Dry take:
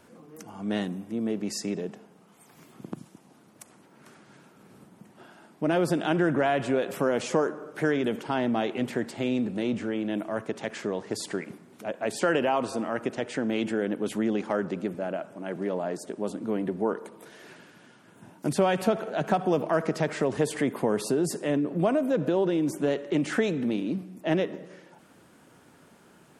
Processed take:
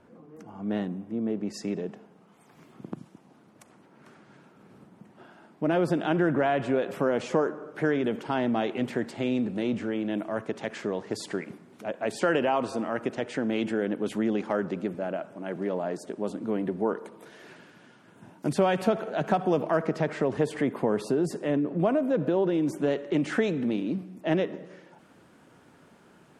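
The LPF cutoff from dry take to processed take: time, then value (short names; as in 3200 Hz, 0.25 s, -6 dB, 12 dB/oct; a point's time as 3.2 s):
LPF 6 dB/oct
1200 Hz
from 1.54 s 2800 Hz
from 8.21 s 5200 Hz
from 19.77 s 2500 Hz
from 22.54 s 4500 Hz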